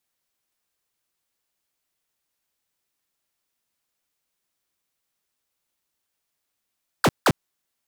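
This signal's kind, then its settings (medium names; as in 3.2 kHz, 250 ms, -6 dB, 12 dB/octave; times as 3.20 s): burst of laser zaps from 1.8 kHz, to 87 Hz, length 0.05 s square, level -16 dB, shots 2, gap 0.17 s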